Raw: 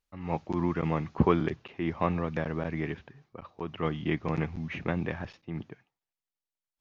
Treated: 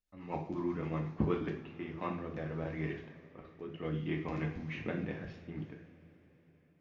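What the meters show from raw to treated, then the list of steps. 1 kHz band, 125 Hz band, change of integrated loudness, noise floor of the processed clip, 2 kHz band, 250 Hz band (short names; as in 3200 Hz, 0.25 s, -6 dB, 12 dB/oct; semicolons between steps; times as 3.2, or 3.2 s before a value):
-9.5 dB, -6.5 dB, -7.0 dB, -67 dBFS, -7.0 dB, -6.5 dB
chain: vocal rider within 5 dB 2 s; rotary speaker horn 8 Hz, later 0.65 Hz, at 1.38; two-slope reverb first 0.45 s, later 4.5 s, from -21 dB, DRR 0.5 dB; gain -8 dB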